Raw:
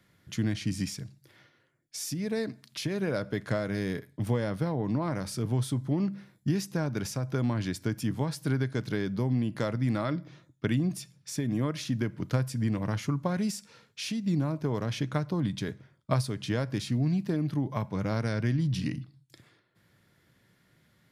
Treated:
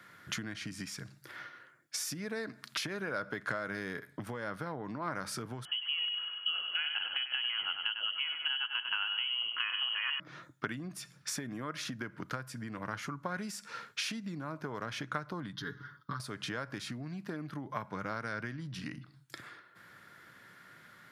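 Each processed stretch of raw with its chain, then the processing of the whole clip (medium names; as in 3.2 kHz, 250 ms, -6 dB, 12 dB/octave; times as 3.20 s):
5.65–10.20 s: feedback delay 97 ms, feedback 44%, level -8.5 dB + frequency inversion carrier 3.1 kHz
15.53–16.20 s: comb 7 ms, depth 82% + compression 2.5:1, threshold -31 dBFS + static phaser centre 2.4 kHz, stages 6
whole clip: compression 8:1, threshold -41 dBFS; high-pass 250 Hz 6 dB/octave; peaking EQ 1.4 kHz +12.5 dB 0.99 oct; trim +6 dB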